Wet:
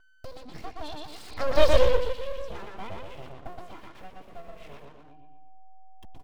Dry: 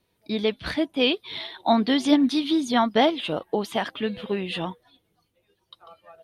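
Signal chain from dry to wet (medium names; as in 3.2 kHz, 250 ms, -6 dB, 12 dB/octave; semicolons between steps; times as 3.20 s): send-on-delta sampling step -40.5 dBFS; Doppler pass-by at 1.66 s, 59 m/s, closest 4.2 m; bass shelf 250 Hz +12 dB; bucket-brigade echo 119 ms, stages 4096, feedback 36%, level -3 dB; upward compressor, threshold -31 dBFS; whistle 760 Hz -57 dBFS; bass shelf 500 Hz +7 dB; comb 2.9 ms, depth 81%; full-wave rectifier; trim -4 dB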